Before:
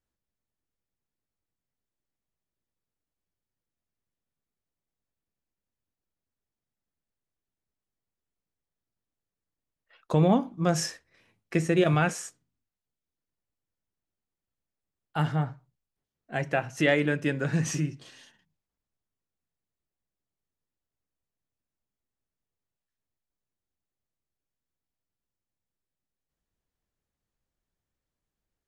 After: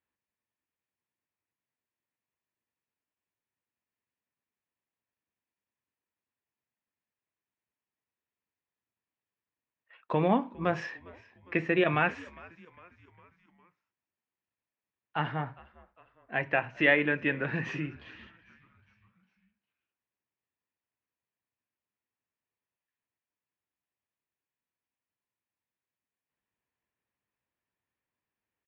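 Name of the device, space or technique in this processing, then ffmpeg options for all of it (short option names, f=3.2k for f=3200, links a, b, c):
frequency-shifting delay pedal into a guitar cabinet: -filter_complex "[0:a]asplit=5[a][b][c][d][e];[b]adelay=405,afreqshift=-86,volume=-22dB[f];[c]adelay=810,afreqshift=-172,volume=-27.4dB[g];[d]adelay=1215,afreqshift=-258,volume=-32.7dB[h];[e]adelay=1620,afreqshift=-344,volume=-38.1dB[i];[a][f][g][h][i]amix=inputs=5:normalize=0,highpass=110,equalizer=f=160:t=q:w=4:g=-6,equalizer=f=990:t=q:w=4:g=7,equalizer=f=1.8k:t=q:w=4:g=7,equalizer=f=2.5k:t=q:w=4:g=7,lowpass=f=3.4k:w=0.5412,lowpass=f=3.4k:w=1.3066,volume=-3dB"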